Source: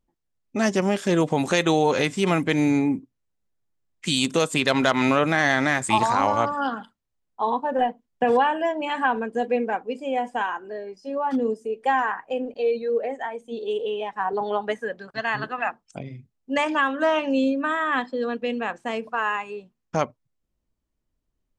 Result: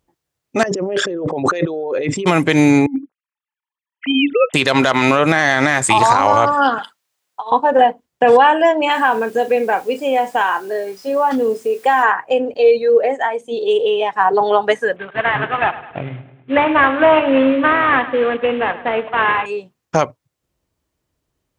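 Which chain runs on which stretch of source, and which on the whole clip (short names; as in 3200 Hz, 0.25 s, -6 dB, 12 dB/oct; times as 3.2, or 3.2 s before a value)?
0.63–2.26 formant sharpening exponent 2 + LPF 5000 Hz + negative-ratio compressor -31 dBFS
2.86–4.54 sine-wave speech + negative-ratio compressor -24 dBFS, ratio -0.5
6.78–7.52 HPF 1400 Hz 6 dB/oct + negative-ratio compressor -35 dBFS, ratio -0.5
8.91–12.03 doubler 31 ms -12.5 dB + compressor 2:1, threshold -24 dBFS + requantised 10-bit, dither triangular
14.96–19.46 CVSD 16 kbps + split-band echo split 510 Hz, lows 0.139 s, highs 0.104 s, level -15.5 dB
whole clip: HPF 84 Hz; bell 220 Hz -9 dB 0.55 oct; maximiser +13 dB; gain -1 dB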